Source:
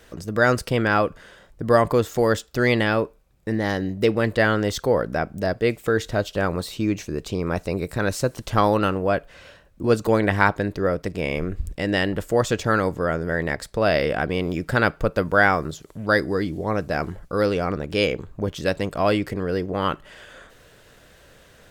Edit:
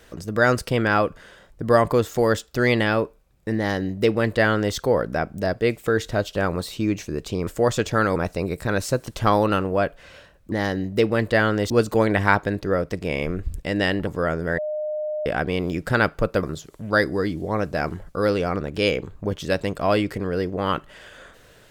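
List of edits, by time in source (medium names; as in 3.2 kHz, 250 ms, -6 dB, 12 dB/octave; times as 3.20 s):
3.57–4.75 s: copy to 9.83 s
12.20–12.89 s: move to 7.47 s
13.40–14.08 s: bleep 609 Hz -24 dBFS
15.25–15.59 s: delete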